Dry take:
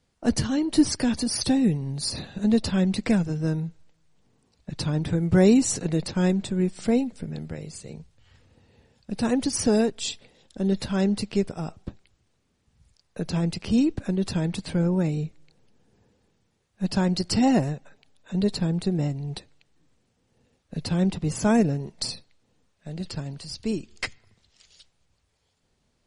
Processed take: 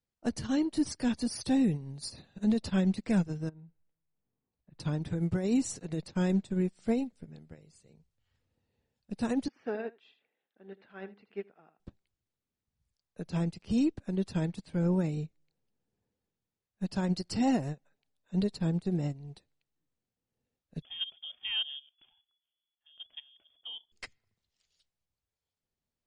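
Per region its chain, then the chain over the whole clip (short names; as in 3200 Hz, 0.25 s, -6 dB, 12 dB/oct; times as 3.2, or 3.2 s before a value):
3.49–4.8 block floating point 7-bit + compressor 16:1, threshold -30 dBFS + air absorption 380 m
9.48–11.8 speaker cabinet 450–2600 Hz, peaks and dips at 560 Hz -6 dB, 980 Hz -5 dB, 1600 Hz +3 dB + echo 79 ms -11 dB
20.82–23.92 inverted band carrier 3400 Hz + level quantiser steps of 10 dB
whole clip: limiter -19 dBFS; upward expander 2.5:1, over -36 dBFS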